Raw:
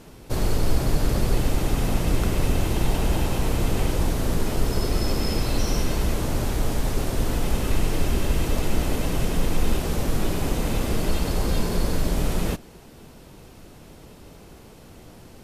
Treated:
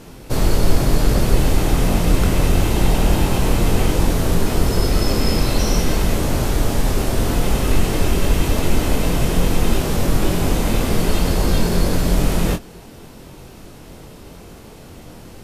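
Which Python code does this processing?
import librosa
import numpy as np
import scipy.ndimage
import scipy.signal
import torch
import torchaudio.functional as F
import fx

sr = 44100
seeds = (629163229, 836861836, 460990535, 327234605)

y = fx.doubler(x, sr, ms=23.0, db=-5.5)
y = F.gain(torch.from_numpy(y), 5.5).numpy()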